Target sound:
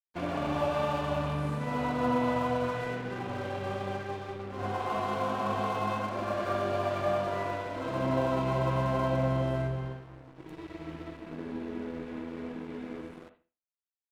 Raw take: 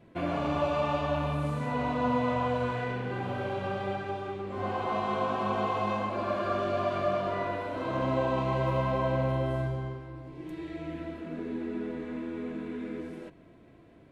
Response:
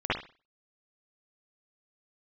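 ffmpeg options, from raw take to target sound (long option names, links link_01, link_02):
-filter_complex "[0:a]asplit=2[link_01][link_02];[link_02]asetrate=58866,aresample=44100,atempo=0.749154,volume=-15dB[link_03];[link_01][link_03]amix=inputs=2:normalize=0,aeval=exprs='sgn(val(0))*max(abs(val(0))-0.00631,0)':channel_layout=same,asplit=2[link_04][link_05];[1:a]atrim=start_sample=2205[link_06];[link_05][link_06]afir=irnorm=-1:irlink=0,volume=-18.5dB[link_07];[link_04][link_07]amix=inputs=2:normalize=0,volume=-1.5dB"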